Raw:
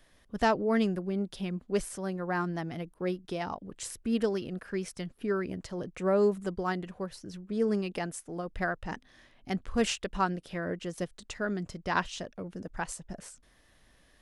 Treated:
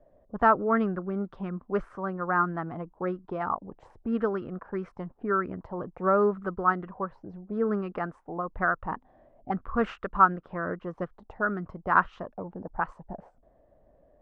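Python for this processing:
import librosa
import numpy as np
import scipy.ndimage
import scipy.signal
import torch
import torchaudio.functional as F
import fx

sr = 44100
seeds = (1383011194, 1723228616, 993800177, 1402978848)

y = fx.envelope_lowpass(x, sr, base_hz=600.0, top_hz=1300.0, q=5.0, full_db=-30.0, direction='up')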